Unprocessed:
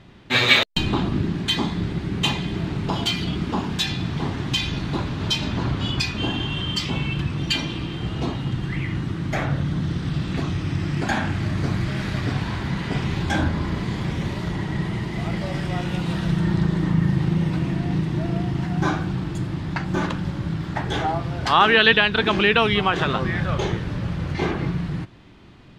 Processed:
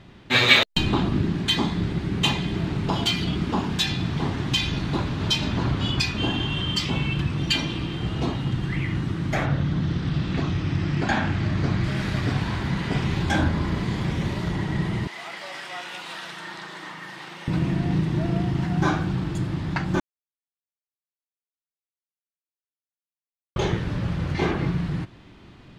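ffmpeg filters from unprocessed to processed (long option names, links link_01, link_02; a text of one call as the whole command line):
ffmpeg -i in.wav -filter_complex "[0:a]asettb=1/sr,asplit=3[link_01][link_02][link_03];[link_01]atrim=end=9.464[link_04];[link_02]atrim=start=9.46:end=11.84,asetpts=PTS-STARTPTS,afade=type=in:duration=0.004:curve=qsin,afade=type=out:start_time=2.376:duration=0.004:curve=qsin,lowpass=6000[link_05];[link_03]atrim=start=11.836[link_06];[link_04][link_05]acrossfade=duration=0.004:curve1=hsin:curve2=qsin[link_07];[link_07][link_06]acrossfade=duration=0.004:curve1=qsin:curve2=hsin,asettb=1/sr,asplit=3[link_08][link_09][link_10];[link_08]atrim=end=15.074[link_11];[link_09]atrim=start=15.07:end=17.48,asetpts=PTS-STARTPTS,afade=type=in:duration=0.004:curve=qsin,afade=type=out:start_time=2.406:duration=0.004:curve=qsin,highpass=880[link_12];[link_10]atrim=start=17.476[link_13];[link_11][link_12]acrossfade=duration=0.004:curve1=hsin:curve2=qsin[link_14];[link_14][link_13]acrossfade=duration=0.004:curve1=qsin:curve2=hsin,asplit=3[link_15][link_16][link_17];[link_15]atrim=end=20,asetpts=PTS-STARTPTS,afade=type=out:start_time=19.996:duration=0.004:curve=hsin[link_18];[link_16]atrim=start=20:end=23.56,asetpts=PTS-STARTPTS,volume=0[link_19];[link_17]atrim=start=23.56,asetpts=PTS-STARTPTS,afade=type=in:duration=0.004:curve=hsin[link_20];[link_18][link_19][link_20]concat=n=3:v=0:a=1" out.wav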